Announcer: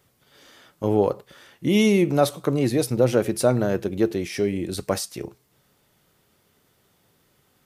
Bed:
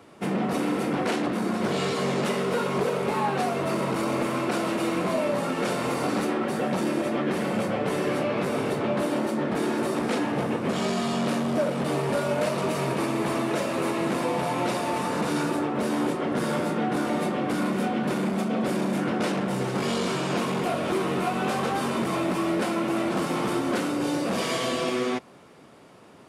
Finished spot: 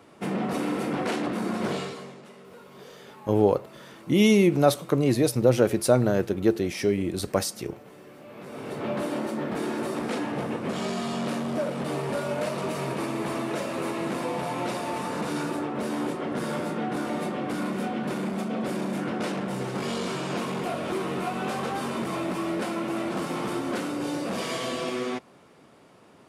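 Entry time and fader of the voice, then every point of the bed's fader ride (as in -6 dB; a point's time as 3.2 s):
2.45 s, -0.5 dB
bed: 1.72 s -2 dB
2.22 s -22 dB
8.17 s -22 dB
8.88 s -3.5 dB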